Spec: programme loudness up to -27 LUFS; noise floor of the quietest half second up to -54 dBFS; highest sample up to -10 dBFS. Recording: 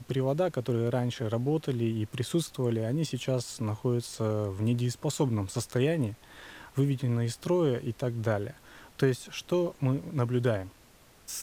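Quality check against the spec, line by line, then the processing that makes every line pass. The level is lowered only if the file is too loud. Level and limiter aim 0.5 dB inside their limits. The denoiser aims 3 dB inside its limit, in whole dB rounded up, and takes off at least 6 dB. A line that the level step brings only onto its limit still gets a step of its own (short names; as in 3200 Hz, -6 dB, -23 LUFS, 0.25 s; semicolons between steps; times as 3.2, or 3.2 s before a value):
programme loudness -30.0 LUFS: OK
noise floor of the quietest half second -57 dBFS: OK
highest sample -11.5 dBFS: OK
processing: none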